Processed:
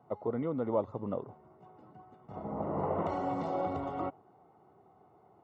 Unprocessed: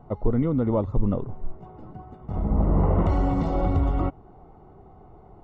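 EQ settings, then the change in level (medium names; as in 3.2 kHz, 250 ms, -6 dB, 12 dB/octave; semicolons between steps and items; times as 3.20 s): high-pass 100 Hz 24 dB/octave; bass shelf 310 Hz -10 dB; dynamic bell 630 Hz, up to +6 dB, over -42 dBFS, Q 0.7; -7.5 dB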